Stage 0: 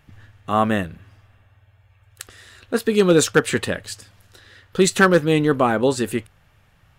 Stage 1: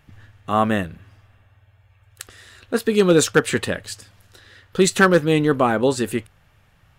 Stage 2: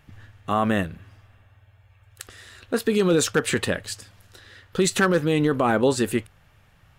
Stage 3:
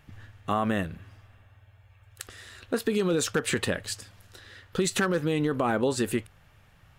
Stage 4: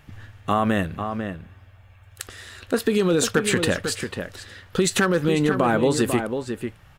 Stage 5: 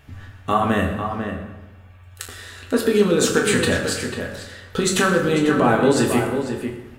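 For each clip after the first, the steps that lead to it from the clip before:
no audible change
peak limiter -11 dBFS, peak gain reduction 6 dB
compression 3:1, threshold -22 dBFS, peak gain reduction 6 dB; trim -1 dB
echo from a far wall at 85 m, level -7 dB; trim +5.5 dB
reverberation RT60 1.1 s, pre-delay 6 ms, DRR 0 dB

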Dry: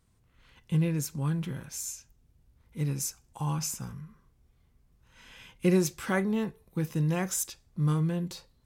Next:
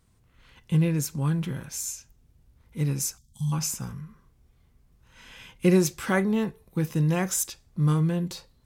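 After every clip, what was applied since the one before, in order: time-frequency box 3.18–3.52 s, 240–3100 Hz -26 dB; trim +4 dB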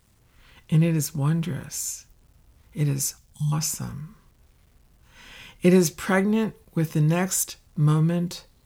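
bit crusher 11-bit; trim +2.5 dB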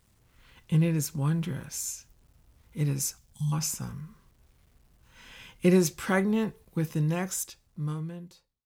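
fade out at the end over 2.05 s; trim -4 dB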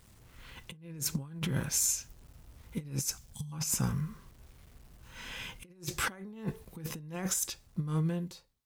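compressor with a negative ratio -34 dBFS, ratio -0.5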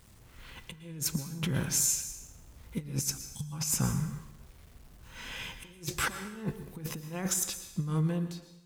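plate-style reverb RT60 0.84 s, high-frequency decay 0.95×, pre-delay 100 ms, DRR 10.5 dB; trim +1.5 dB

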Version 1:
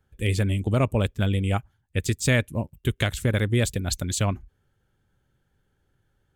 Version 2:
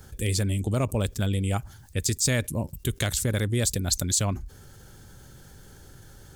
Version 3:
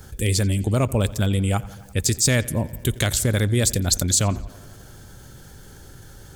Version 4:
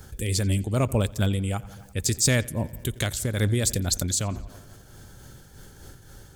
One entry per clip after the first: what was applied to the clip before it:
resonant high shelf 3.8 kHz +8.5 dB, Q 1.5; level flattener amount 50%; trim -5.5 dB
filtered feedback delay 87 ms, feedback 73%, low-pass 4.9 kHz, level -20 dB; trim +5 dB
random flutter of the level, depth 65%

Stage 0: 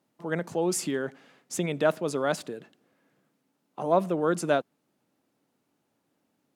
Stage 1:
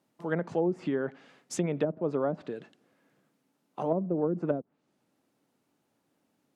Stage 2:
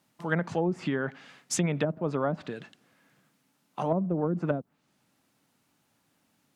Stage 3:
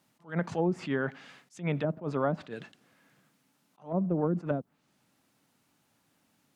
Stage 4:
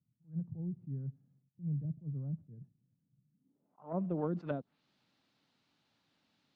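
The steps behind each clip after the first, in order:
low-pass that closes with the level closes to 320 Hz, closed at -20.5 dBFS
peaking EQ 410 Hz -10.5 dB 2 oct; trim +8.5 dB
attacks held to a fixed rise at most 220 dB/s
low-pass sweep 130 Hz -> 4.1 kHz, 3.28–4.15 s; trim -6.5 dB

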